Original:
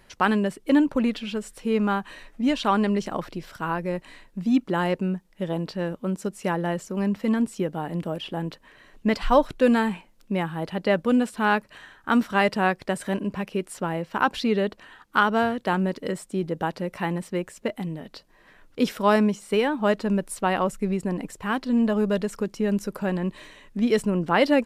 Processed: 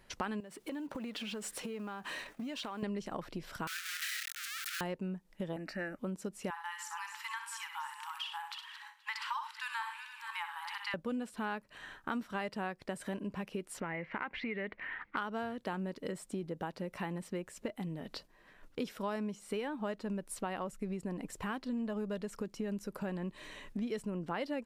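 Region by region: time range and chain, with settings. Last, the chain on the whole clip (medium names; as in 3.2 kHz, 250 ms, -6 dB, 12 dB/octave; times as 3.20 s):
0.40–2.83 s: companding laws mixed up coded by mu + high-pass 270 Hz 6 dB/octave + compression, threshold -35 dBFS
3.67–4.81 s: one-bit comparator + steep high-pass 1.3 kHz 96 dB/octave
5.56–5.99 s: peaking EQ 2.1 kHz +12 dB 1.6 oct + static phaser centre 670 Hz, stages 8
6.50–10.94 s: backward echo that repeats 238 ms, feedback 42%, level -11.5 dB + brick-wall FIR high-pass 820 Hz + multi-tap echo 62/100 ms -8/-17.5 dB
13.80–15.17 s: block-companded coder 7-bit + compression 2:1, threshold -28 dBFS + resonant low-pass 2.1 kHz, resonance Q 8.3
whole clip: gate -51 dBFS, range -7 dB; compression 4:1, threshold -38 dBFS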